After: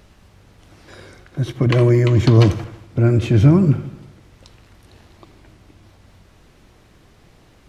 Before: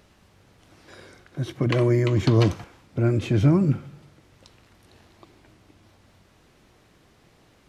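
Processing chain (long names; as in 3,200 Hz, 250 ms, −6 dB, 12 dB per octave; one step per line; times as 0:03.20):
low-shelf EQ 77 Hz +10.5 dB
on a send: delay with a low-pass on its return 81 ms, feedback 55%, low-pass 3,400 Hz, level −16 dB
on the sum: level +4.5 dB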